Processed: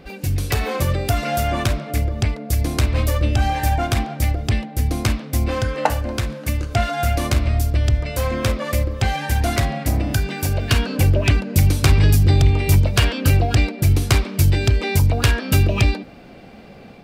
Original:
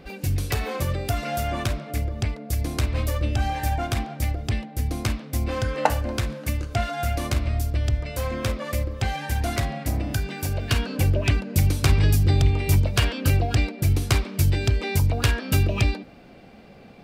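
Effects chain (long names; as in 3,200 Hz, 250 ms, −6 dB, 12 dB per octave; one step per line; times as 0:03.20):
automatic gain control gain up to 3.5 dB
in parallel at −10 dB: gain into a clipping stage and back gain 14 dB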